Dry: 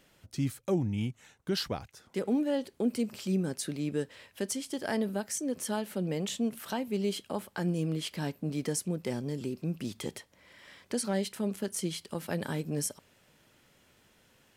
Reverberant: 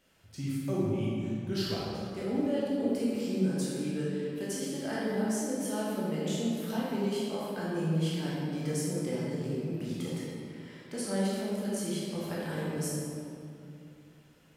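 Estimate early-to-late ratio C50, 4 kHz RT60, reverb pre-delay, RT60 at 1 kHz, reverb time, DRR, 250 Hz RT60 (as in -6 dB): -3.0 dB, 1.5 s, 14 ms, 2.4 s, 2.6 s, -7.5 dB, 3.0 s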